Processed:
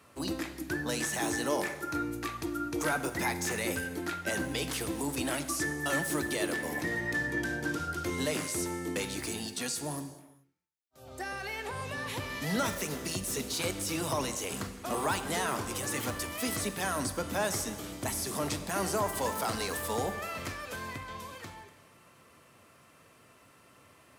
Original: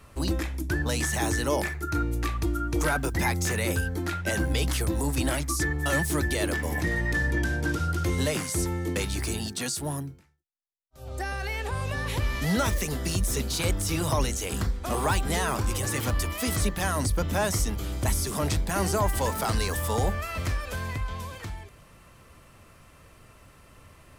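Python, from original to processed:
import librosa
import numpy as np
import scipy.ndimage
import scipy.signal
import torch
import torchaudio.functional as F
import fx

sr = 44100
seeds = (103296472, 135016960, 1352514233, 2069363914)

y = scipy.signal.sosfilt(scipy.signal.butter(2, 170.0, 'highpass', fs=sr, output='sos'), x)
y = fx.rev_gated(y, sr, seeds[0], gate_ms=460, shape='falling', drr_db=9.0)
y = F.gain(torch.from_numpy(y), -4.0).numpy()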